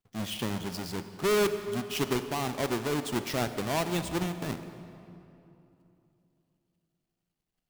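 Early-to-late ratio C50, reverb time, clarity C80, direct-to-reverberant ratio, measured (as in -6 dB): 10.0 dB, 2.9 s, 11.0 dB, 9.5 dB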